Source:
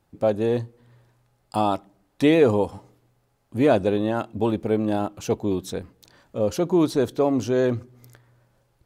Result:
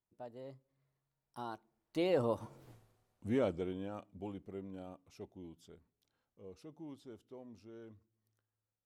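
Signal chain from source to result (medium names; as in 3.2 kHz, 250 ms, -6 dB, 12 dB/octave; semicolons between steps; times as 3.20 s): Doppler pass-by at 2.70 s, 40 m/s, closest 2.3 m; trim +6 dB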